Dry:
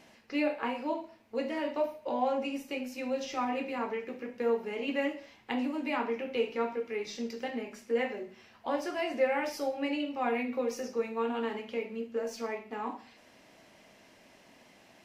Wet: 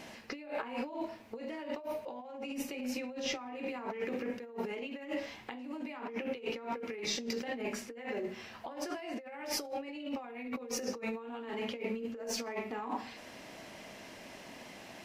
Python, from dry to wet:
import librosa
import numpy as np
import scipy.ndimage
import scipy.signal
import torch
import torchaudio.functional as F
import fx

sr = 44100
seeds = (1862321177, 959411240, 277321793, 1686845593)

y = fx.high_shelf(x, sr, hz=5800.0, db=-6.0, at=(2.84, 3.55))
y = fx.over_compress(y, sr, threshold_db=-42.0, ratio=-1.0)
y = y * 10.0 ** (1.5 / 20.0)